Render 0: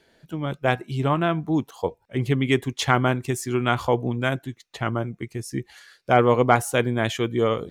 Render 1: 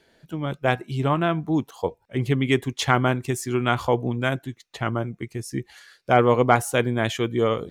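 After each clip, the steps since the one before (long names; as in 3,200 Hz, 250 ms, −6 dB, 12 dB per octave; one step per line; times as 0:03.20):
no processing that can be heard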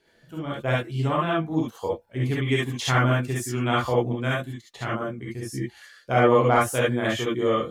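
reverb whose tail is shaped and stops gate 90 ms rising, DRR −6 dB
level −7.5 dB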